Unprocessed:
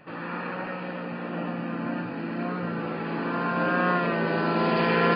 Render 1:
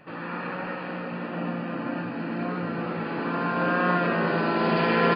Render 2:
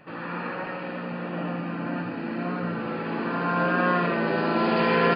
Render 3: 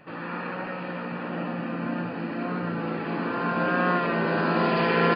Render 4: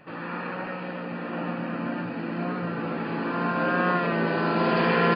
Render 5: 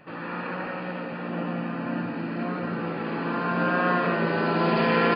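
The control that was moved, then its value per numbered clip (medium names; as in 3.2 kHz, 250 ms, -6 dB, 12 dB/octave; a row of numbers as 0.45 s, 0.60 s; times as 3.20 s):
delay, time: 344 ms, 80 ms, 679 ms, 1034 ms, 172 ms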